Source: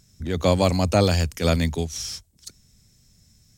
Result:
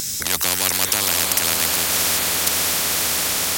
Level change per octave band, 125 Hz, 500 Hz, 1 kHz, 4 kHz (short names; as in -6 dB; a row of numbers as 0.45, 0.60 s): -12.5, -7.0, +3.0, +11.5 dB